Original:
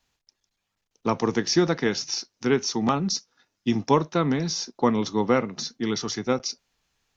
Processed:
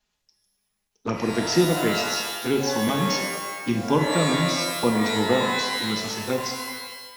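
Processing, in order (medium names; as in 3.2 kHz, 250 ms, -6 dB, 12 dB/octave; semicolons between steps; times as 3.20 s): touch-sensitive flanger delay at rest 4.8 ms, full sweep at -17.5 dBFS; pitch-shifted reverb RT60 1.2 s, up +12 st, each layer -2 dB, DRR 3 dB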